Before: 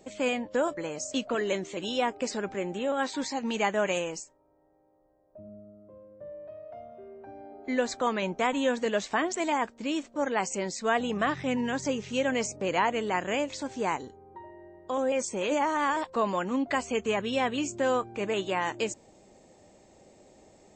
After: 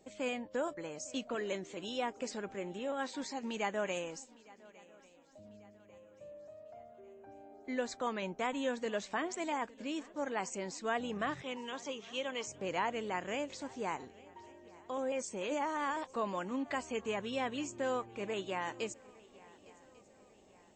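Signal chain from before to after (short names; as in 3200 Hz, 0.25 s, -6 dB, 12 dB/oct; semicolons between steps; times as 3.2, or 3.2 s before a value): 11.42–12.47 speaker cabinet 390–7100 Hz, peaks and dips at 680 Hz -7 dB, 1100 Hz +5 dB, 1700 Hz -6 dB, 3300 Hz +8 dB, 4800 Hz -5 dB; swung echo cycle 1.145 s, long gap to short 3:1, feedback 44%, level -23 dB; gain -8.5 dB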